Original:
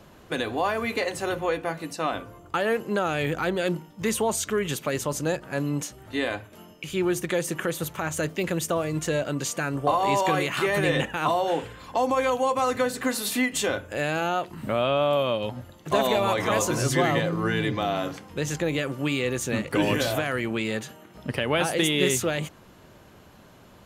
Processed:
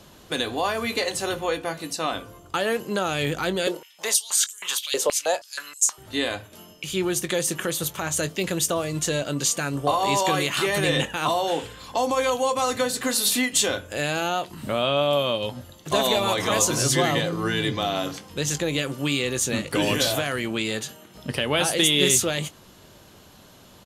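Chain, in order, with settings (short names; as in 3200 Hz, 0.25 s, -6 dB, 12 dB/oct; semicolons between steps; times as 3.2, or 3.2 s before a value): band shelf 6200 Hz +8 dB 2.3 oct; doubler 21 ms -13.5 dB; 3.67–5.98 stepped high-pass 6.3 Hz 470–7400 Hz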